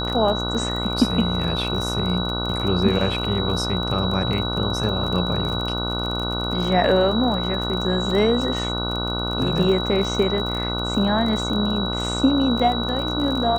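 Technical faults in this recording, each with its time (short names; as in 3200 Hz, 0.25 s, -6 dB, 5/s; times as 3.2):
buzz 60 Hz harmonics 25 -27 dBFS
crackle 29/s -26 dBFS
tone 3900 Hz -27 dBFS
8.11 gap 2.7 ms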